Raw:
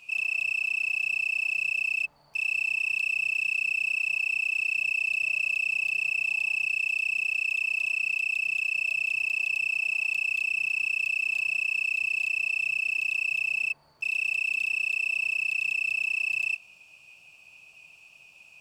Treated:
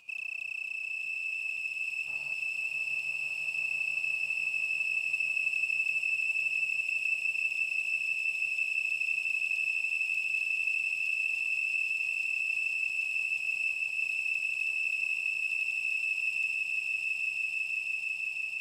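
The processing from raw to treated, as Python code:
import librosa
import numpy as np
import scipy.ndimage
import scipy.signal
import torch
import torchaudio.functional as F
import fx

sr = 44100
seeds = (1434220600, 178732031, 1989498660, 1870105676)

y = fx.tremolo_random(x, sr, seeds[0], hz=3.5, depth_pct=55)
y = fx.level_steps(y, sr, step_db=21)
y = fx.echo_swell(y, sr, ms=166, loudest=8, wet_db=-6.5)
y = y * librosa.db_to_amplitude(4.5)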